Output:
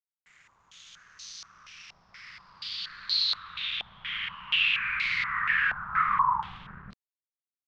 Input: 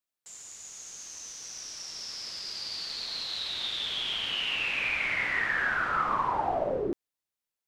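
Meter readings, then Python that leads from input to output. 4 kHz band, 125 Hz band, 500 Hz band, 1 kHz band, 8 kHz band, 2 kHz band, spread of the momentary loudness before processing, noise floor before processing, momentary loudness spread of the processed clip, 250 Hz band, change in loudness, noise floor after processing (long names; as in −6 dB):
+1.0 dB, −2.0 dB, below −25 dB, +2.0 dB, below −10 dB, +1.5 dB, 14 LU, below −85 dBFS, 21 LU, below −10 dB, +3.0 dB, below −85 dBFS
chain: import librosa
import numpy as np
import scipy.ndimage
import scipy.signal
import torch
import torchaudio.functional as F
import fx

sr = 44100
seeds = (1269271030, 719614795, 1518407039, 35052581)

y = scipy.signal.sosfilt(scipy.signal.ellip(3, 1.0, 40, [190.0, 1100.0], 'bandstop', fs=sr, output='sos'), x)
y = np.sign(y) * np.maximum(np.abs(y) - 10.0 ** (-52.5 / 20.0), 0.0)
y = fx.filter_held_lowpass(y, sr, hz=4.2, low_hz=760.0, high_hz=4300.0)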